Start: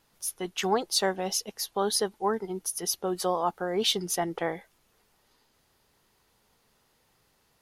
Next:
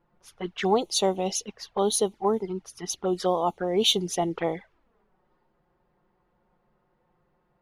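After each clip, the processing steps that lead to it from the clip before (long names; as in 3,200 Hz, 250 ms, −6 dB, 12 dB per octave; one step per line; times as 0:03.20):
flanger swept by the level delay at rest 5.8 ms, full sweep at −26 dBFS
low-pass that shuts in the quiet parts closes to 1,100 Hz, open at −25 dBFS
level +5 dB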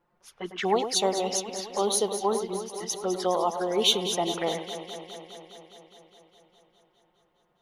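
low-shelf EQ 230 Hz −9.5 dB
on a send: delay that swaps between a low-pass and a high-pass 103 ms, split 2,400 Hz, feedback 85%, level −9 dB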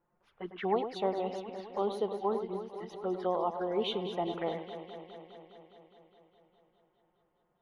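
high-frequency loss of the air 480 metres
level −4 dB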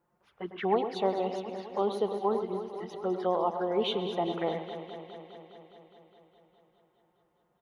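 high-pass filter 45 Hz
repeating echo 133 ms, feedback 59%, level −17 dB
level +3 dB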